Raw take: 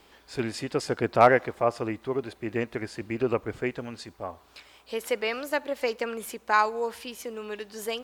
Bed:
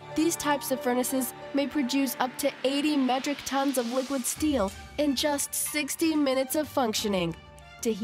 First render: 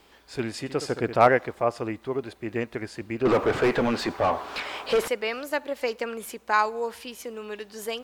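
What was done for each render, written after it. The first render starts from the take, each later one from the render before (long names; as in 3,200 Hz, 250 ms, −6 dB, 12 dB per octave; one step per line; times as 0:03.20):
0:00.59–0:01.28: flutter between parallel walls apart 11.7 metres, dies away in 0.35 s
0:03.25–0:05.08: mid-hump overdrive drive 34 dB, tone 1,100 Hz, clips at −11.5 dBFS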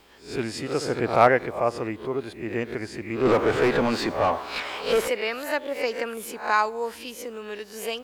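peak hold with a rise ahead of every peak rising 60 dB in 0.38 s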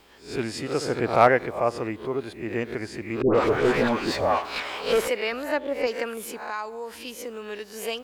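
0:03.22–0:04.45: all-pass dispersion highs, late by 127 ms, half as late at 1,000 Hz
0:05.32–0:05.87: spectral tilt −2 dB per octave
0:06.43–0:07.05: downward compressor 2 to 1, threshold −35 dBFS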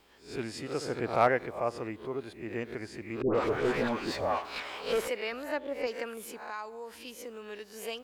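level −7.5 dB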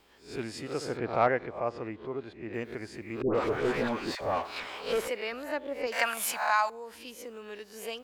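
0:00.97–0:02.54: high-frequency loss of the air 130 metres
0:04.15–0:04.67: all-pass dispersion lows, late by 55 ms, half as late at 750 Hz
0:05.92–0:06.70: drawn EQ curve 190 Hz 0 dB, 430 Hz −10 dB, 630 Hz +14 dB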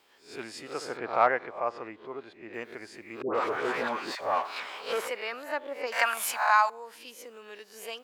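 dynamic equaliser 1,100 Hz, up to +6 dB, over −42 dBFS, Q 0.94
high-pass filter 530 Hz 6 dB per octave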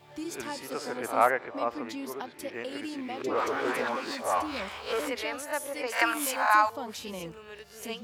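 mix in bed −12 dB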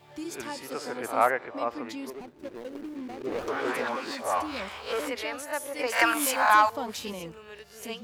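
0:02.10–0:03.48: running median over 41 samples
0:05.79–0:07.13: leveller curve on the samples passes 1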